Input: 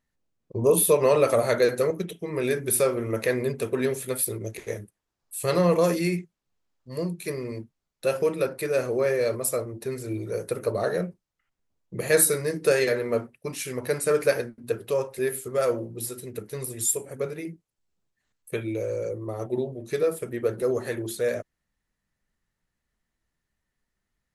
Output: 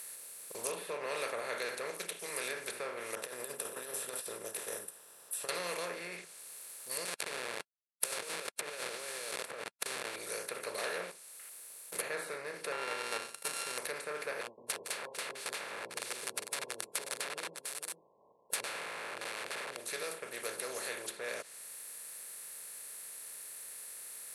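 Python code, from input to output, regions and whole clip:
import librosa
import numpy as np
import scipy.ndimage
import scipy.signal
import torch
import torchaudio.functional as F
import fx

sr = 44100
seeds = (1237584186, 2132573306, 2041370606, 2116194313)

y = fx.chain(x, sr, fx.over_compress(threshold_db=-29.0, ratio=-0.5),
    fx.moving_average(points=20), at=(3.15, 5.49))
y = fx.chain(y, sr, fx.delta_hold(step_db=-28.0),
    fx.over_compress(threshold_db=-34.0, ratio=-1.0), at=(7.05, 10.16))
y = fx.chain(y, sr, fx.highpass(hz=330.0, slope=6),
    fx.leveller(passes=2), at=(10.78, 12.02))
y = fx.chain(y, sr, fx.sample_sort(block=32),
    fx.high_shelf(hz=5000.0, db=-12.0), at=(12.72, 13.78))
y = fx.chain(y, sr, fx.brickwall_lowpass(high_hz=1100.0),
    fx.overflow_wrap(gain_db=30.0),
    fx.echo_single(ms=449, db=-20.0), at=(14.41, 19.77))
y = fx.bin_compress(y, sr, power=0.4)
y = np.diff(y, prepend=0.0)
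y = fx.env_lowpass_down(y, sr, base_hz=1900.0, full_db=-20.5)
y = y * 10.0 ** (-1.5 / 20.0)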